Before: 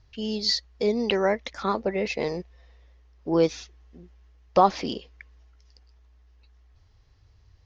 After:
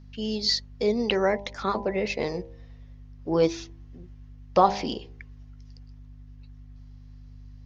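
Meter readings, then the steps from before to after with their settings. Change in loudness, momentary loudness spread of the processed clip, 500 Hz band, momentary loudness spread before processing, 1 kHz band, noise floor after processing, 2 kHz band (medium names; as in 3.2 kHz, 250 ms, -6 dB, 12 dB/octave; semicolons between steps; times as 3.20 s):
-0.5 dB, 16 LU, -0.5 dB, 13 LU, -0.5 dB, -47 dBFS, 0.0 dB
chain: hum 50 Hz, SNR 17 dB; de-hum 66.68 Hz, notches 15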